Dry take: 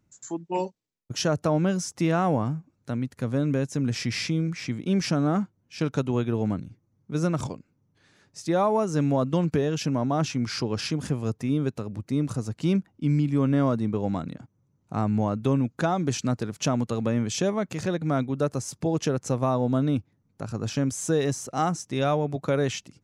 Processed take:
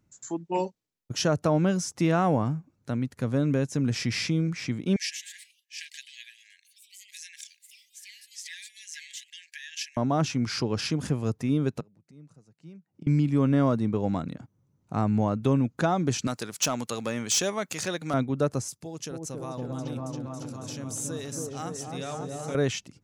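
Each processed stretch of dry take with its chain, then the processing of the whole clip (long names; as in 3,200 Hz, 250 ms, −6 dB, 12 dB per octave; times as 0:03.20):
0:04.96–0:09.97: linear-phase brick-wall high-pass 1,600 Hz + delay with pitch and tempo change per echo 131 ms, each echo +3 semitones, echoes 3, each echo −6 dB
0:11.80–0:13.07: gate with flip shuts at −29 dBFS, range −25 dB + loudspeaker in its box 140–9,600 Hz, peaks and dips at 160 Hz +8 dB, 250 Hz −5 dB, 1,100 Hz −4 dB, 3,400 Hz −6 dB
0:16.27–0:18.14: spectral tilt +3.5 dB per octave + hard clipping −19 dBFS
0:18.68–0:22.55: first-order pre-emphasis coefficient 0.8 + echo whose low-pass opens from repeat to repeat 276 ms, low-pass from 750 Hz, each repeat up 1 octave, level 0 dB
whole clip: no processing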